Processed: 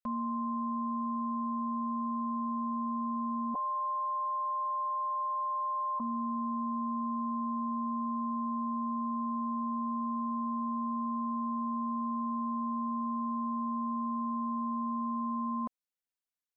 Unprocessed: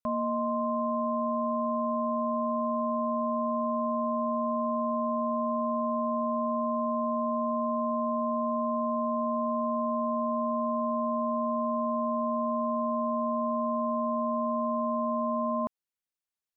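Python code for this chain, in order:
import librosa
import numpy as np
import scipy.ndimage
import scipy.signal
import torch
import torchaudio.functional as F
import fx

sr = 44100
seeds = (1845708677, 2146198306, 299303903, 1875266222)

y = fx.sine_speech(x, sr, at=(3.54, 6.0))
y = y + 0.98 * np.pad(y, (int(4.0 * sr / 1000.0), 0))[:len(y)]
y = y * 10.0 ** (-8.0 / 20.0)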